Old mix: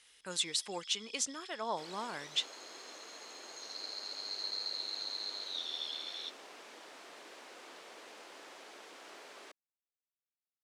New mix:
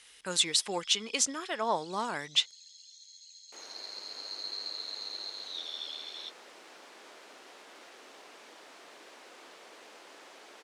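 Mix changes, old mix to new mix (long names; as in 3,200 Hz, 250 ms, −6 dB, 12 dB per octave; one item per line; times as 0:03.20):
speech +7.0 dB
second sound: entry +1.75 s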